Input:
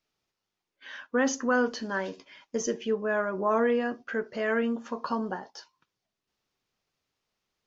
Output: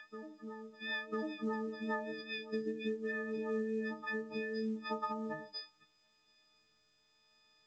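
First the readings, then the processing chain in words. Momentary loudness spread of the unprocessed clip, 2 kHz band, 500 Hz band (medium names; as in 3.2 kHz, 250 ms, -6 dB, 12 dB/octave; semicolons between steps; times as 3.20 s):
14 LU, -9.0 dB, -10.5 dB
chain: partials quantised in pitch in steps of 6 st; time-frequency box 2.12–4.82 s, 470–1500 Hz -16 dB; low-pass that closes with the level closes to 990 Hz, closed at -22.5 dBFS; steep low-pass 5.2 kHz 72 dB/octave; de-hum 101.1 Hz, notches 7; compression 5:1, threshold -37 dBFS, peak gain reduction 14 dB; rotary cabinet horn 5 Hz, later 0.8 Hz, at 3.01 s; reverse echo 996 ms -10 dB; trim +2.5 dB; µ-law 128 kbps 16 kHz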